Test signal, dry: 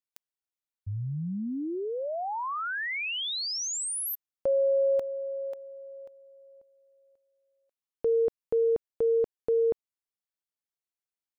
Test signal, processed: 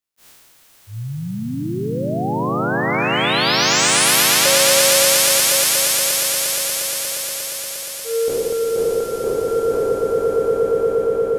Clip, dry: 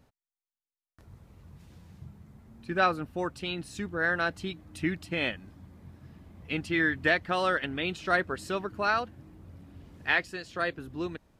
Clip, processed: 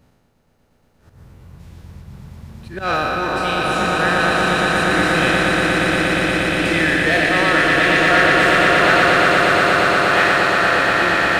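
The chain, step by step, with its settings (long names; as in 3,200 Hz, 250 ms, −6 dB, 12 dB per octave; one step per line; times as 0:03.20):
peak hold with a decay on every bin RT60 2.08 s
in parallel at −3.5 dB: gain into a clipping stage and back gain 24.5 dB
on the sum: volume swells 124 ms
echo that builds up and dies away 118 ms, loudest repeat 8, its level −5 dB
level +1 dB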